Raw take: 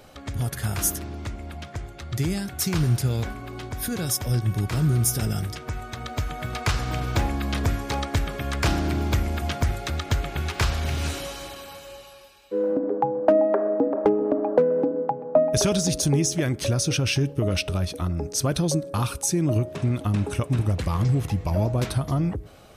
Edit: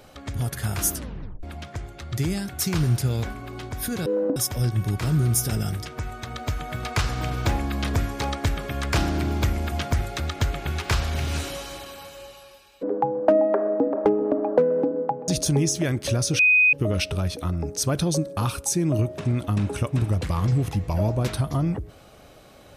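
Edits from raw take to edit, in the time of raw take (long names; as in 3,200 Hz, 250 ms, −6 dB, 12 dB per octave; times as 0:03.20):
0:00.93: tape stop 0.50 s
0:12.53–0:12.83: move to 0:04.06
0:15.28–0:15.85: remove
0:16.96–0:17.30: beep over 2,500 Hz −13.5 dBFS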